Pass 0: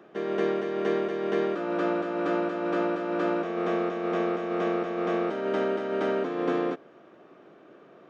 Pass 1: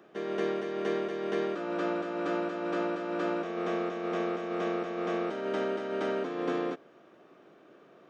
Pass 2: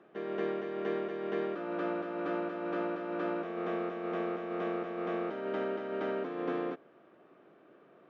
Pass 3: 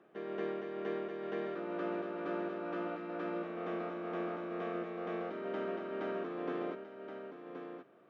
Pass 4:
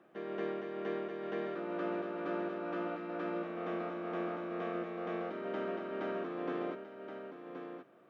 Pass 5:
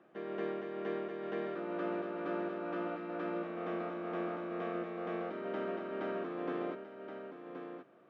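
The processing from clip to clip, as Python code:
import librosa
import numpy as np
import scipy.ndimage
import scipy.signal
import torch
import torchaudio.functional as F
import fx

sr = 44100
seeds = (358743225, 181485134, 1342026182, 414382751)

y1 = fx.high_shelf(x, sr, hz=3800.0, db=7.5)
y1 = F.gain(torch.from_numpy(y1), -4.5).numpy()
y2 = scipy.signal.sosfilt(scipy.signal.butter(2, 2800.0, 'lowpass', fs=sr, output='sos'), y1)
y2 = F.gain(torch.from_numpy(y2), -3.0).numpy()
y3 = y2 + 10.0 ** (-8.0 / 20.0) * np.pad(y2, (int(1074 * sr / 1000.0), 0))[:len(y2)]
y3 = F.gain(torch.from_numpy(y3), -4.0).numpy()
y4 = fx.notch(y3, sr, hz=420.0, q=12.0)
y4 = F.gain(torch.from_numpy(y4), 1.0).numpy()
y5 = fx.air_absorb(y4, sr, metres=63.0)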